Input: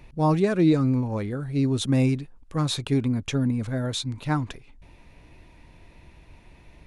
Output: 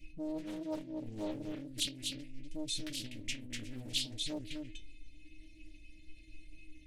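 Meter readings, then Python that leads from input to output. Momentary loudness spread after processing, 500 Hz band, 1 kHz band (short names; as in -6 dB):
23 LU, -17.5 dB, -23.5 dB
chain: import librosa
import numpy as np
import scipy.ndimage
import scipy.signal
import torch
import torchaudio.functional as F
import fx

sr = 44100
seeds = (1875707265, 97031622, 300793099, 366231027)

y = scipy.signal.sosfilt(scipy.signal.ellip(3, 1.0, 40, [470.0, 2300.0], 'bandstop', fs=sr, output='sos'), x)
y = fx.low_shelf(y, sr, hz=110.0, db=3.5)
y = fx.tremolo_shape(y, sr, shape='saw_down', hz=1.3, depth_pct=35)
y = fx.over_compress(y, sr, threshold_db=-30.0, ratio=-1.0)
y = fx.peak_eq(y, sr, hz=390.0, db=-13.5, octaves=0.23)
y = fx.stiff_resonator(y, sr, f0_hz=310.0, decay_s=0.31, stiffness=0.008)
y = y + 10.0 ** (-4.0 / 20.0) * np.pad(y, (int(246 * sr / 1000.0), 0))[:len(y)]
y = fx.doppler_dist(y, sr, depth_ms=0.8)
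y = y * librosa.db_to_amplitude(7.5)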